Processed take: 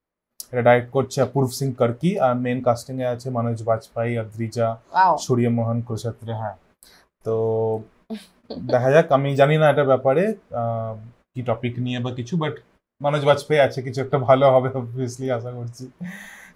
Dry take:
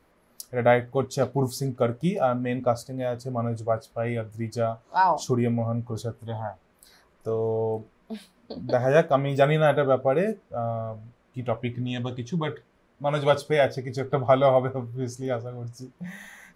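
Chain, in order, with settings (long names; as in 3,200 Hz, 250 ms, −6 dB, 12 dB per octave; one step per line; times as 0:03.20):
noise gate −58 dBFS, range −27 dB
level +4.5 dB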